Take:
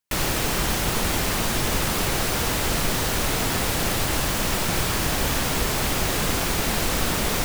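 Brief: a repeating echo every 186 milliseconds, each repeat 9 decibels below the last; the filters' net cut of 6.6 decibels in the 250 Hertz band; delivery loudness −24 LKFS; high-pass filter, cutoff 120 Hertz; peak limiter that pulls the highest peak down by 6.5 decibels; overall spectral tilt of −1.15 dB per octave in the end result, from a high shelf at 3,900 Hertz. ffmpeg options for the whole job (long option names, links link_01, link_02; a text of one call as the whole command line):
ffmpeg -i in.wav -af "highpass=120,equalizer=frequency=250:width_type=o:gain=-9,highshelf=frequency=3900:gain=6,alimiter=limit=-16dB:level=0:latency=1,aecho=1:1:186|372|558|744:0.355|0.124|0.0435|0.0152,volume=-1dB" out.wav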